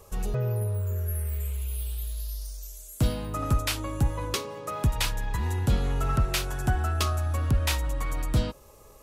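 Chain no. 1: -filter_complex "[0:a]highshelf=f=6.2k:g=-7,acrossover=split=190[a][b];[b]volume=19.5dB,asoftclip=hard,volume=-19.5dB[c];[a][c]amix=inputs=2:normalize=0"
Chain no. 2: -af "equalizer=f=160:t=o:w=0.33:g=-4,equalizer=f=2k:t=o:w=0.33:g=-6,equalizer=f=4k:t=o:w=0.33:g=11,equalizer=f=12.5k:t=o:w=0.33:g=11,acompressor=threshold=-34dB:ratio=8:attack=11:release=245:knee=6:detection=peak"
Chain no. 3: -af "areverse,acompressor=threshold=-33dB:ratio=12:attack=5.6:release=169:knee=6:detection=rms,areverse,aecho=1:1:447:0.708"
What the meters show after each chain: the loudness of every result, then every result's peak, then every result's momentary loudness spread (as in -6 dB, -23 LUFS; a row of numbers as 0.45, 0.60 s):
-29.5, -38.0, -37.5 LUFS; -13.0, -17.0, -23.5 dBFS; 9, 3, 3 LU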